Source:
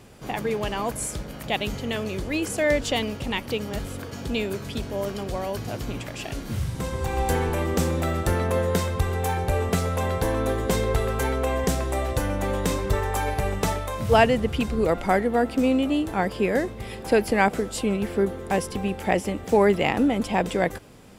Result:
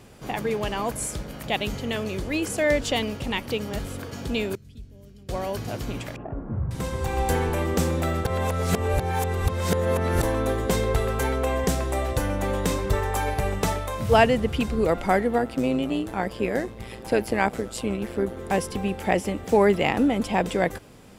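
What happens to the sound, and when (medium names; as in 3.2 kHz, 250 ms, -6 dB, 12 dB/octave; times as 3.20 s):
4.55–5.29 s: amplifier tone stack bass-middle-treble 10-0-1
6.16–6.71 s: low-pass 1.2 kHz 24 dB/octave
8.25–10.23 s: reverse
15.38–18.37 s: AM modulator 120 Hz, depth 50%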